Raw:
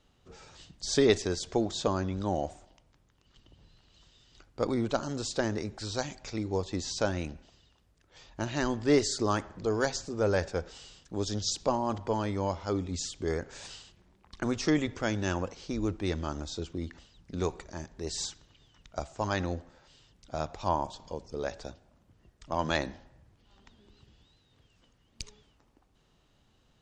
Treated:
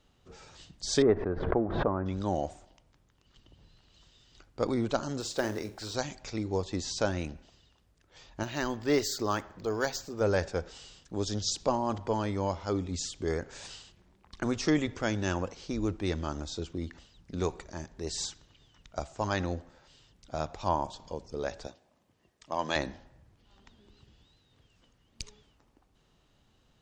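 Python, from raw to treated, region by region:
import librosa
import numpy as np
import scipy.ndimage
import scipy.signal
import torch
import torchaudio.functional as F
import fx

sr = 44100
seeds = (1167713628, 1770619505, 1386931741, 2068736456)

y = fx.chain(x, sr, fx.law_mismatch(coded='A'),
    fx.lowpass(hz=1500.0, slope=24),
    fx.pre_swell(db_per_s=54.0), at=(1.02, 2.06))
y = fx.chain(y, sr, fx.bass_treble(bass_db=-6, treble_db=-2),
    fx.quant_companded(bits=6),
    fx.room_flutter(wall_m=7.9, rt60_s=0.22), at=(5.2, 5.95))
y = fx.chain(y, sr, fx.low_shelf(hz=430.0, db=-5.0),
    fx.resample_linear(factor=2), at=(8.43, 10.21))
y = fx.chain(y, sr, fx.highpass(hz=360.0, slope=6),
    fx.notch(hz=1400.0, q=8.7), at=(21.67, 22.76))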